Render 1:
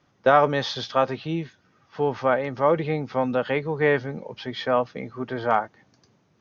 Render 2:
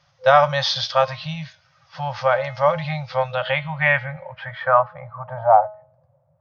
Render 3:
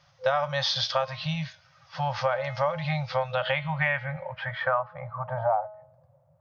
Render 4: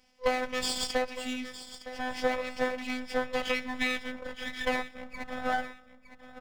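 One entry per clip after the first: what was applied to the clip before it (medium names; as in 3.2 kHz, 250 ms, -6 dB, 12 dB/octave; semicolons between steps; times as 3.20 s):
de-hum 212.3 Hz, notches 27; low-pass sweep 5.1 kHz -> 550 Hz, 2.98–5.95 s; FFT band-reject 170–510 Hz; trim +3.5 dB
compression 5:1, threshold -23 dBFS, peak gain reduction 14 dB
comb filter that takes the minimum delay 0.38 ms; robot voice 254 Hz; feedback delay 912 ms, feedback 24%, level -13.5 dB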